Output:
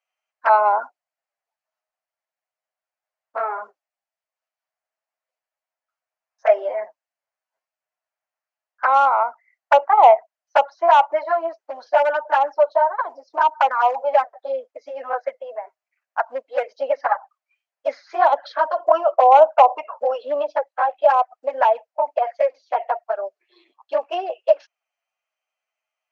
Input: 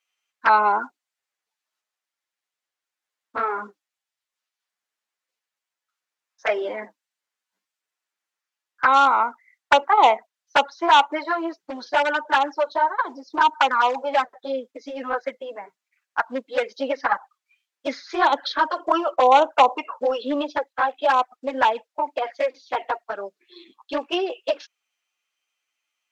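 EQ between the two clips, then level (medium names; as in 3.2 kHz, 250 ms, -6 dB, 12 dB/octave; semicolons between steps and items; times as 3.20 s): resonant high-pass 640 Hz, resonance Q 4.9; peaking EQ 3.6 kHz -8.5 dB 0.31 oct; treble shelf 6.1 kHz -12 dB; -4.0 dB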